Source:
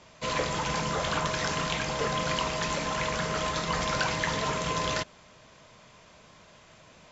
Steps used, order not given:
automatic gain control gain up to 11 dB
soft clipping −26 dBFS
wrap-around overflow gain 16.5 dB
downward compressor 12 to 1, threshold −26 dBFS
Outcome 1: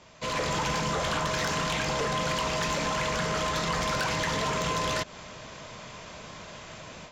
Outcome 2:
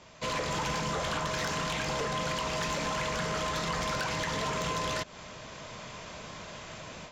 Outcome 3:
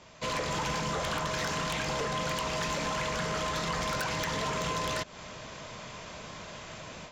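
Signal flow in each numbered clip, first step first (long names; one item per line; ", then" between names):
soft clipping, then wrap-around overflow, then automatic gain control, then downward compressor
automatic gain control, then downward compressor, then soft clipping, then wrap-around overflow
wrap-around overflow, then automatic gain control, then downward compressor, then soft clipping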